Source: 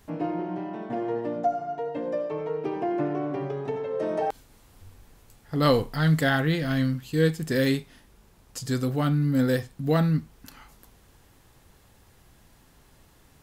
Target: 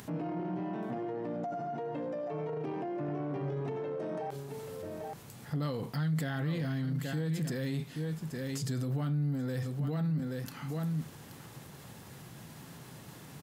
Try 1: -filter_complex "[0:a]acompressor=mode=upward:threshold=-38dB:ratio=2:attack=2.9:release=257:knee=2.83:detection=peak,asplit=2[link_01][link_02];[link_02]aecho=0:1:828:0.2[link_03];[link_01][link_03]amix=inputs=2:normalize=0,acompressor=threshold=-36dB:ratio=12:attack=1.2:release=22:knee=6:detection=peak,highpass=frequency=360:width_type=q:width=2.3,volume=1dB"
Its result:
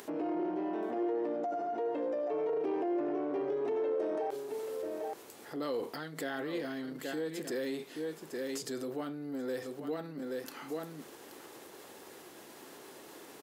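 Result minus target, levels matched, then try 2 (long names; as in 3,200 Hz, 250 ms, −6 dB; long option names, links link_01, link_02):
125 Hz band −20.0 dB
-filter_complex "[0:a]acompressor=mode=upward:threshold=-38dB:ratio=2:attack=2.9:release=257:knee=2.83:detection=peak,asplit=2[link_01][link_02];[link_02]aecho=0:1:828:0.2[link_03];[link_01][link_03]amix=inputs=2:normalize=0,acompressor=threshold=-36dB:ratio=12:attack=1.2:release=22:knee=6:detection=peak,highpass=frequency=140:width_type=q:width=2.3,volume=1dB"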